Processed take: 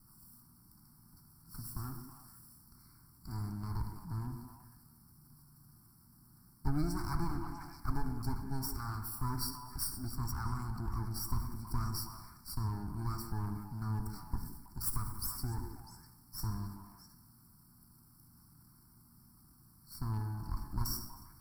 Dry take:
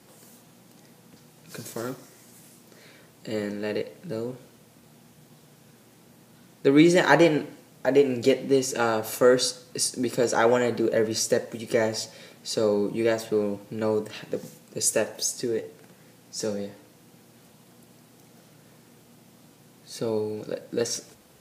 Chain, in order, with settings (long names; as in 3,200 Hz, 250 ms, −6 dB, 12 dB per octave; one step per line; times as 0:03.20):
lower of the sound and its delayed copy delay 0.9 ms
elliptic band-stop filter 1,800–5,000 Hz, stop band 50 dB
phaser with its sweep stopped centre 1,900 Hz, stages 6
echo through a band-pass that steps 162 ms, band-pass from 310 Hz, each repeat 1.4 octaves, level −6 dB
convolution reverb RT60 1.3 s, pre-delay 53 ms, DRR 12 dB
transient designer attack 0 dB, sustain +5 dB
guitar amp tone stack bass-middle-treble 6-0-2
speech leveller within 3 dB 0.5 s
parametric band 170 Hz −5.5 dB 1.1 octaves
level +11.5 dB